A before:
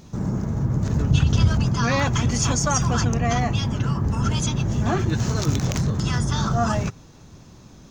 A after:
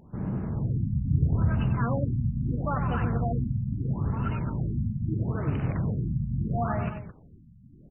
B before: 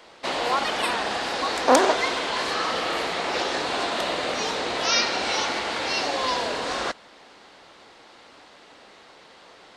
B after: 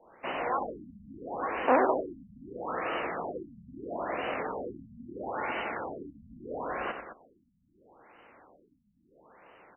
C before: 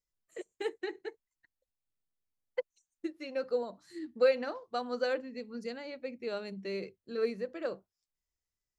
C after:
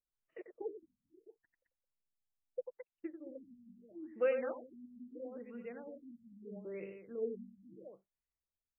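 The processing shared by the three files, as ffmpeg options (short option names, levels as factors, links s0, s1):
-af "aecho=1:1:93.29|215.7:0.398|0.282,afftfilt=real='re*lt(b*sr/1024,240*pow(3100/240,0.5+0.5*sin(2*PI*0.76*pts/sr)))':imag='im*lt(b*sr/1024,240*pow(3100/240,0.5+0.5*sin(2*PI*0.76*pts/sr)))':win_size=1024:overlap=0.75,volume=0.473"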